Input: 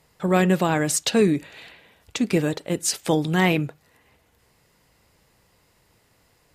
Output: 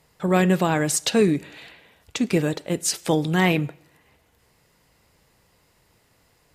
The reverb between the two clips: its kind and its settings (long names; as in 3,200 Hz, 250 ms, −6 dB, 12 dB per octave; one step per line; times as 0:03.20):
dense smooth reverb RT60 0.74 s, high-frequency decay 0.95×, DRR 20 dB